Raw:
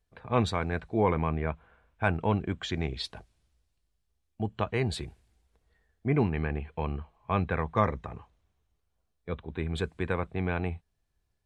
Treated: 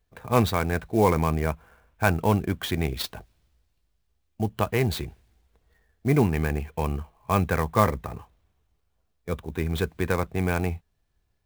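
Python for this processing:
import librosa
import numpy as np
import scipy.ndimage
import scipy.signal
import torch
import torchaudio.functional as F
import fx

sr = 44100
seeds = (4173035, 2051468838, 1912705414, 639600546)

y = fx.clock_jitter(x, sr, seeds[0], jitter_ms=0.024)
y = F.gain(torch.from_numpy(y), 5.0).numpy()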